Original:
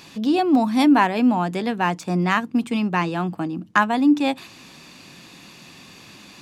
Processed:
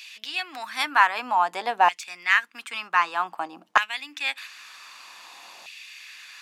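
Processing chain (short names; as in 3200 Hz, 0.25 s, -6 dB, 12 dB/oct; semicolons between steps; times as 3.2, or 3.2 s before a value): LFO high-pass saw down 0.53 Hz 690–2600 Hz; gain -1 dB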